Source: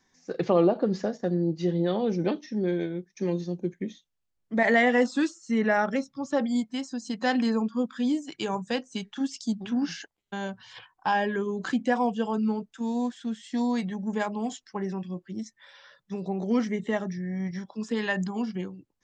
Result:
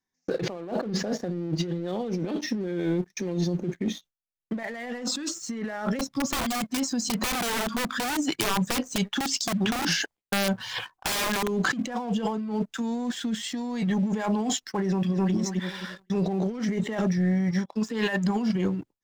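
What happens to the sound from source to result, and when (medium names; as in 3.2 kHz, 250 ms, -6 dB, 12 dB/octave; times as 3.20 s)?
5.99–11.48 s: integer overflow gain 24 dB
14.87–15.33 s: echo throw 260 ms, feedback 30%, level -4 dB
17.05–18.50 s: upward expansion, over -44 dBFS
whole clip: gate with hold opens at -49 dBFS; compressor with a negative ratio -35 dBFS, ratio -1; waveshaping leveller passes 2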